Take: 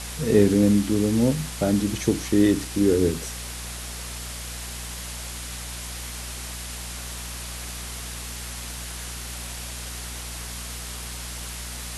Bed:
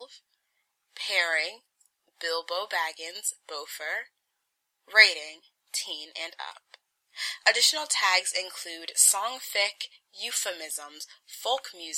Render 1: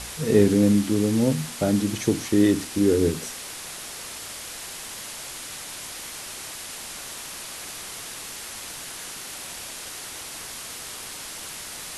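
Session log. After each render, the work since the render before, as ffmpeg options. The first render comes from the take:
ffmpeg -i in.wav -af "bandreject=frequency=60:width_type=h:width=4,bandreject=frequency=120:width_type=h:width=4,bandreject=frequency=180:width_type=h:width=4,bandreject=frequency=240:width_type=h:width=4" out.wav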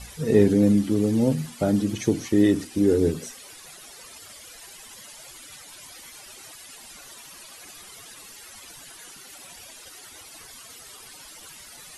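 ffmpeg -i in.wav -af "afftdn=noise_reduction=14:noise_floor=-37" out.wav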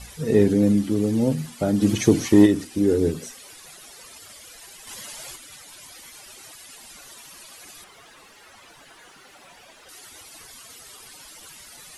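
ffmpeg -i in.wav -filter_complex "[0:a]asplit=3[link_01][link_02][link_03];[link_01]afade=type=out:start_time=1.81:duration=0.02[link_04];[link_02]acontrast=73,afade=type=in:start_time=1.81:duration=0.02,afade=type=out:start_time=2.45:duration=0.02[link_05];[link_03]afade=type=in:start_time=2.45:duration=0.02[link_06];[link_04][link_05][link_06]amix=inputs=3:normalize=0,asettb=1/sr,asplit=3[link_07][link_08][link_09];[link_07]atrim=end=4.874[link_10];[link_08]atrim=start=4.87:end=5.36,asetpts=PTS-STARTPTS,afade=type=in:duration=0.004:curve=qsin,afade=type=out:start_time=0.486:duration=0.004:curve=qsin,acontrast=52[link_11];[link_09]atrim=start=5.356[link_12];[link_10][link_11]acrossfade=duration=0.004:curve1=hsin:curve2=qsin[link_13];[link_13][link_12]acrossfade=duration=0.004:curve1=qsin:curve2=hsin,asettb=1/sr,asplit=3[link_14][link_15][link_16];[link_14]atrim=end=7.844[link_17];[link_15]atrim=start=7.84:end=9.89,asetpts=PTS-STARTPTS,afade=type=in:duration=0.004:curve=qsin,afade=type=out:start_time=2.046:duration=0.004:curve=qsin,asplit=2[link_18][link_19];[link_19]highpass=frequency=720:poles=1,volume=14dB,asoftclip=type=tanh:threshold=-31.5dB[link_20];[link_18][link_20]amix=inputs=2:normalize=0,lowpass=frequency=1100:poles=1,volume=-6dB[link_21];[link_16]atrim=start=9.886[link_22];[link_17][link_21]acrossfade=duration=0.004:curve1=hsin:curve2=qsin[link_23];[link_23][link_22]acrossfade=duration=0.004:curve1=qsin:curve2=hsin" out.wav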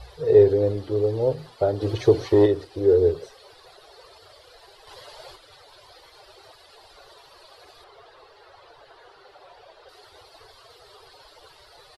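ffmpeg -i in.wav -af "firequalizer=gain_entry='entry(110,0);entry(210,-25);entry(400,6);entry(2300,-10);entry(4300,-1);entry(6400,-20)':delay=0.05:min_phase=1" out.wav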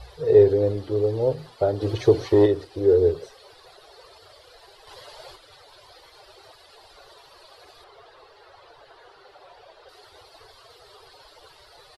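ffmpeg -i in.wav -af anull out.wav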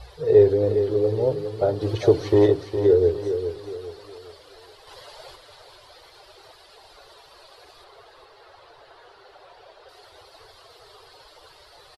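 ffmpeg -i in.wav -af "aecho=1:1:410|820|1230|1640:0.355|0.131|0.0486|0.018" out.wav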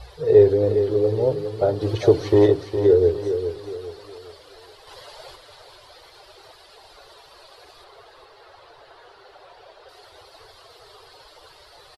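ffmpeg -i in.wav -af "volume=1.5dB" out.wav

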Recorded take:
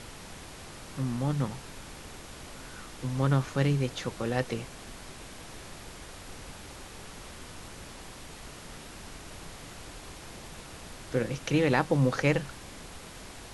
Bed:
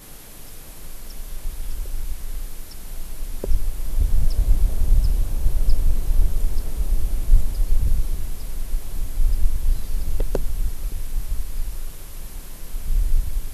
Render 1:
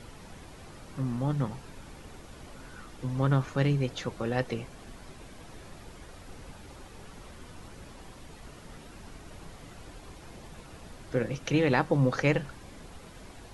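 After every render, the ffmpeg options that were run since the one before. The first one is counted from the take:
ffmpeg -i in.wav -af "afftdn=noise_reduction=8:noise_floor=-46" out.wav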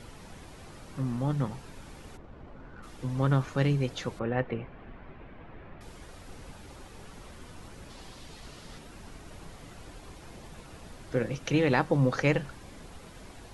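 ffmpeg -i in.wav -filter_complex "[0:a]asplit=3[link_01][link_02][link_03];[link_01]afade=type=out:start_time=2.16:duration=0.02[link_04];[link_02]adynamicsmooth=sensitivity=6.5:basefreq=1400,afade=type=in:start_time=2.16:duration=0.02,afade=type=out:start_time=2.82:duration=0.02[link_05];[link_03]afade=type=in:start_time=2.82:duration=0.02[link_06];[link_04][link_05][link_06]amix=inputs=3:normalize=0,asettb=1/sr,asplit=3[link_07][link_08][link_09];[link_07]atrim=end=4.194[link_10];[link_08]atrim=start=4.19:end=5.81,asetpts=PTS-STARTPTS,afade=type=in:duration=0.004:curve=qsin,afade=type=out:start_time=1.616:duration=0.004:curve=qsin,lowpass=frequency=2500:width=0.5412,lowpass=frequency=2500:width=1.3066[link_11];[link_09]atrim=start=5.806[link_12];[link_10][link_11]acrossfade=duration=0.004:curve1=hsin:curve2=qsin[link_13];[link_13][link_12]acrossfade=duration=0.004:curve1=qsin:curve2=hsin,asettb=1/sr,asplit=3[link_14][link_15][link_16];[link_14]atrim=end=7.904[link_17];[link_15]atrim=start=7.9:end=8.79,asetpts=PTS-STARTPTS,afade=type=in:duration=0.004:curve=qsin,afade=type=out:start_time=0.886:duration=0.004:curve=qsin,equalizer=frequency=4300:width_type=o:width=1.2:gain=7[link_18];[link_16]atrim=start=8.786[link_19];[link_17][link_18]acrossfade=duration=0.004:curve1=hsin:curve2=qsin[link_20];[link_20][link_19]acrossfade=duration=0.004:curve1=qsin:curve2=hsin" out.wav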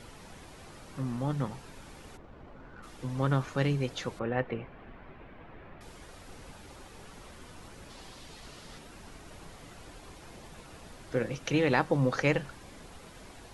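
ffmpeg -i in.wav -af "lowshelf=frequency=270:gain=-4" out.wav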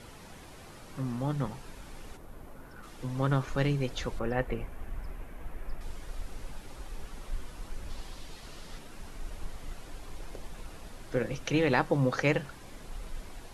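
ffmpeg -i in.wav -i bed.wav -filter_complex "[1:a]volume=-22dB[link_01];[0:a][link_01]amix=inputs=2:normalize=0" out.wav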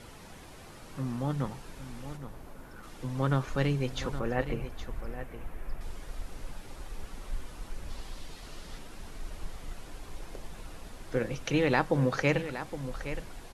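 ffmpeg -i in.wav -af "aecho=1:1:817:0.266" out.wav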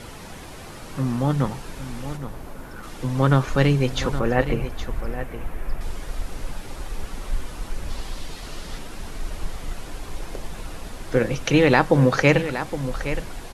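ffmpeg -i in.wav -af "volume=10dB,alimiter=limit=-1dB:level=0:latency=1" out.wav

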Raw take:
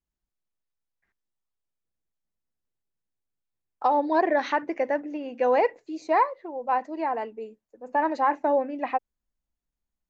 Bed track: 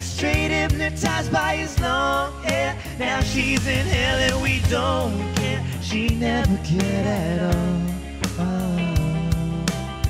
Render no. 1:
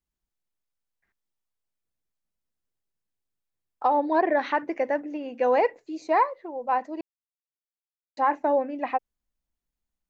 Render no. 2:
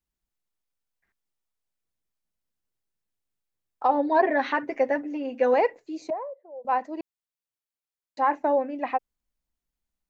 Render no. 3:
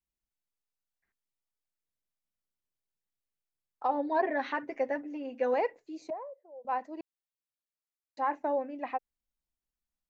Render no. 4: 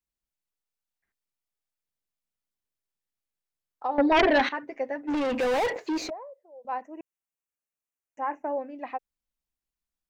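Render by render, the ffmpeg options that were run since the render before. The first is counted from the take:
ffmpeg -i in.wav -filter_complex "[0:a]asettb=1/sr,asplit=3[link_01][link_02][link_03];[link_01]atrim=end=3.844[link_04];[link_02]atrim=start=3.84:end=4.55,asetpts=PTS-STARTPTS,afade=type=in:duration=0.004:curve=qsin,afade=type=out:start_time=0.706:duration=0.004:curve=qsin,lowpass=3800[link_05];[link_03]atrim=start=4.546[link_06];[link_04][link_05]acrossfade=duration=0.004:curve1=hsin:curve2=qsin[link_07];[link_07][link_06]acrossfade=duration=0.004:curve1=qsin:curve2=hsin,asplit=3[link_08][link_09][link_10];[link_08]atrim=end=7.01,asetpts=PTS-STARTPTS,afade=type=out:start_time=7.006:duration=0.004:curve=hsin[link_11];[link_09]atrim=start=7.01:end=8.17,asetpts=PTS-STARTPTS,volume=0[link_12];[link_10]atrim=start=8.17,asetpts=PTS-STARTPTS,afade=type=in:duration=0.004:curve=hsin[link_13];[link_11][link_12][link_13]concat=n=3:v=0:a=1" out.wav
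ffmpeg -i in.wav -filter_complex "[0:a]asettb=1/sr,asplit=3[link_01][link_02][link_03];[link_01]atrim=end=3.884[link_04];[link_02]atrim=start=3.88:end=5.54,asetpts=PTS-STARTPTS,afade=type=in:duration=0.004:curve=qsin,afade=type=out:start_time=1.656:duration=0.004:curve=qsin,aecho=1:1:7.5:0.65,atrim=end_sample=73206[link_05];[link_03]atrim=start=5.536[link_06];[link_04][link_05]acrossfade=duration=0.004:curve1=hsin:curve2=qsin[link_07];[link_07][link_06]acrossfade=duration=0.004:curve1=qsin:curve2=hsin,asettb=1/sr,asplit=3[link_08][link_09][link_10];[link_08]atrim=end=6.104[link_11];[link_09]atrim=start=6.1:end=6.65,asetpts=PTS-STARTPTS,afade=type=in:duration=0.004:curve=qsin,afade=type=out:start_time=0.546:duration=0.004:curve=qsin,bandpass=frequency=580:width_type=q:width=7[link_12];[link_10]atrim=start=6.646[link_13];[link_11][link_12]acrossfade=duration=0.004:curve1=hsin:curve2=qsin[link_14];[link_14][link_13]acrossfade=duration=0.004:curve1=qsin:curve2=hsin" out.wav
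ffmpeg -i in.wav -af "volume=-7.5dB" out.wav
ffmpeg -i in.wav -filter_complex "[0:a]asettb=1/sr,asplit=3[link_01][link_02][link_03];[link_01]atrim=end=3.984[link_04];[link_02]atrim=start=3.98:end=4.49,asetpts=PTS-STARTPTS,afade=type=in:duration=0.004:curve=qsin,afade=type=out:start_time=0.506:duration=0.004:curve=qsin,aeval=exprs='0.158*sin(PI/2*3.16*val(0)/0.158)':channel_layout=same[link_05];[link_03]atrim=start=4.486[link_06];[link_04][link_05]acrossfade=duration=0.004:curve1=hsin:curve2=qsin[link_07];[link_07][link_06]acrossfade=duration=0.004:curve1=qsin:curve2=hsin,asplit=3[link_08][link_09][link_10];[link_08]afade=type=out:start_time=5.07:duration=0.02[link_11];[link_09]asplit=2[link_12][link_13];[link_13]highpass=frequency=720:poles=1,volume=37dB,asoftclip=type=tanh:threshold=-19.5dB[link_14];[link_12][link_14]amix=inputs=2:normalize=0,lowpass=frequency=2500:poles=1,volume=-6dB,afade=type=in:start_time=5.07:duration=0.02,afade=type=out:start_time=6.08:duration=0.02[link_15];[link_10]afade=type=in:start_time=6.08:duration=0.02[link_16];[link_11][link_15][link_16]amix=inputs=3:normalize=0,asettb=1/sr,asplit=3[link_17][link_18][link_19];[link_17]atrim=end=6.814[link_20];[link_18]atrim=start=6.81:end=8.58,asetpts=PTS-STARTPTS,afade=type=in:duration=0.004:curve=qsin,afade=type=out:start_time=1.766:duration=0.004:curve=qsin,asuperstop=centerf=4100:order=12:qfactor=1.6[link_21];[link_19]atrim=start=8.576[link_22];[link_20][link_21]acrossfade=duration=0.004:curve1=hsin:curve2=qsin[link_23];[link_23][link_22]acrossfade=duration=0.004:curve1=qsin:curve2=hsin" out.wav

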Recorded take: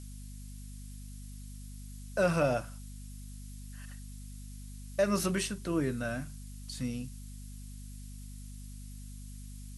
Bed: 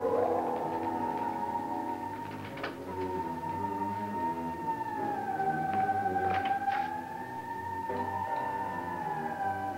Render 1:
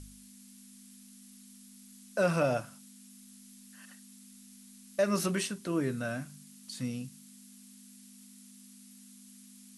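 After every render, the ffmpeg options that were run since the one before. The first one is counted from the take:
ffmpeg -i in.wav -af "bandreject=frequency=50:width_type=h:width=4,bandreject=frequency=100:width_type=h:width=4,bandreject=frequency=150:width_type=h:width=4" out.wav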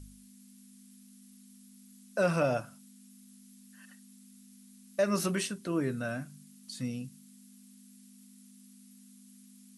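ffmpeg -i in.wav -af "afftdn=noise_reduction=6:noise_floor=-54" out.wav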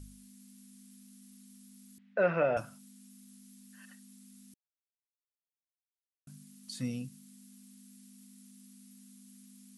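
ffmpeg -i in.wav -filter_complex "[0:a]asettb=1/sr,asplit=3[link_01][link_02][link_03];[link_01]atrim=end=1.984[link_04];[link_02]atrim=start=1.98:end=2.57,asetpts=PTS-STARTPTS,afade=type=in:duration=0.004:curve=qsin,afade=type=out:start_time=0.586:duration=0.004:curve=qsin,highpass=210,equalizer=frequency=270:width_type=q:width=4:gain=-7,equalizer=frequency=450:width_type=q:width=4:gain=4,equalizer=frequency=1100:width_type=q:width=4:gain=-4,equalizer=frequency=1900:width_type=q:width=4:gain=6,lowpass=frequency=2700:width=0.5412,lowpass=frequency=2700:width=1.3066[link_05];[link_03]atrim=start=2.566[link_06];[link_04][link_05]acrossfade=duration=0.004:curve1=hsin:curve2=qsin[link_07];[link_07][link_06]acrossfade=duration=0.004:curve1=qsin:curve2=hsin,asplit=3[link_08][link_09][link_10];[link_08]atrim=end=4.54,asetpts=PTS-STARTPTS,afade=type=out:start_time=4.536:duration=0.004:curve=hsin[link_11];[link_09]atrim=start=4.54:end=6.27,asetpts=PTS-STARTPTS,volume=0[link_12];[link_10]atrim=start=6.27,asetpts=PTS-STARTPTS,afade=type=in:duration=0.004:curve=hsin[link_13];[link_11][link_12][link_13]concat=n=3:v=0:a=1" out.wav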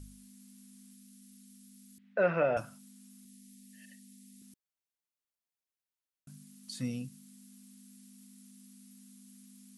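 ffmpeg -i in.wav -filter_complex "[0:a]asettb=1/sr,asplit=3[link_01][link_02][link_03];[link_01]atrim=end=0.934[link_04];[link_02]atrim=start=0.93:end=2.04,asetpts=PTS-STARTPTS,afade=type=in:duration=0.004:curve=qsin,afade=type=out:start_time=1.106:duration=0.004:curve=qsin,equalizer=frequency=750:width_type=o:width=1.3:gain=-10.5[link_05];[link_03]atrim=start=2.036[link_06];[link_04][link_05]acrossfade=duration=0.004:curve1=hsin:curve2=qsin[link_07];[link_07][link_06]acrossfade=duration=0.004:curve1=qsin:curve2=hsin,asettb=1/sr,asplit=3[link_08][link_09][link_10];[link_08]atrim=end=3.254[link_11];[link_09]atrim=start=3.25:end=4.42,asetpts=PTS-STARTPTS,afade=type=in:duration=0.004:curve=qsin,afade=type=out:start_time=1.166:duration=0.004:curve=qsin,asuperstop=centerf=1100:order=20:qfactor=1.1[link_12];[link_10]atrim=start=4.416[link_13];[link_11][link_12]acrossfade=duration=0.004:curve1=hsin:curve2=qsin[link_14];[link_14][link_13]acrossfade=duration=0.004:curve1=qsin:curve2=hsin" out.wav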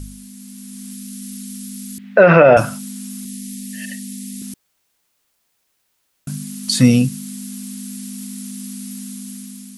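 ffmpeg -i in.wav -af "dynaudnorm=framelen=320:gausssize=5:maxgain=8dB,alimiter=level_in=17dB:limit=-1dB:release=50:level=0:latency=1" out.wav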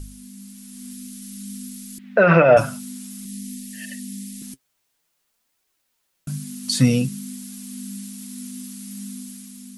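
ffmpeg -i in.wav -af "flanger=delay=2.4:depth=6.1:regen=48:speed=0.53:shape=triangular" out.wav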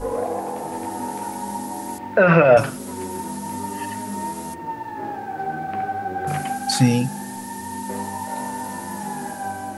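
ffmpeg -i in.wav -i bed.wav -filter_complex "[1:a]volume=3.5dB[link_01];[0:a][link_01]amix=inputs=2:normalize=0" out.wav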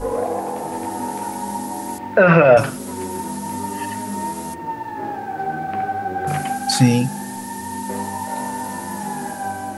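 ffmpeg -i in.wav -af "volume=2.5dB,alimiter=limit=-2dB:level=0:latency=1" out.wav

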